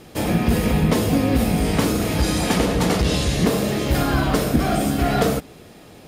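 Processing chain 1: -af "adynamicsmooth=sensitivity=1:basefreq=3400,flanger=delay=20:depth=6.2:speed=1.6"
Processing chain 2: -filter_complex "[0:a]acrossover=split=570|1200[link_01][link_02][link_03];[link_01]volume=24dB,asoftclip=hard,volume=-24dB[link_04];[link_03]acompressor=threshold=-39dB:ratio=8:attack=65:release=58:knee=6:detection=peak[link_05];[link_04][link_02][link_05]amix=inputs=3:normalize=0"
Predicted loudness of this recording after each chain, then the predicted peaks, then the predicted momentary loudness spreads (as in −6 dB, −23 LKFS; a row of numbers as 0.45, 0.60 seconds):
−23.5, −24.5 LKFS; −8.5, −11.5 dBFS; 3, 2 LU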